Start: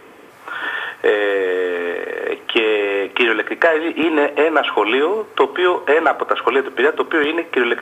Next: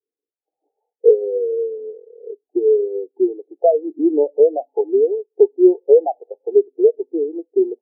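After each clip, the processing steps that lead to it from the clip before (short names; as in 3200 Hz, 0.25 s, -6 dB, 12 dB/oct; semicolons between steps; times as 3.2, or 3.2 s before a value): Chebyshev low-pass 880 Hz, order 10; spectral expander 2.5:1; gain +3.5 dB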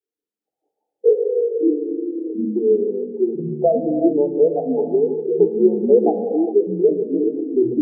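echoes that change speed 0.134 s, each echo -6 st, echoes 3, each echo -6 dB; non-linear reverb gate 0.44 s flat, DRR 5.5 dB; gain -2.5 dB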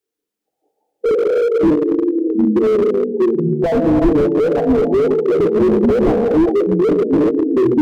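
slew limiter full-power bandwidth 40 Hz; gain +8.5 dB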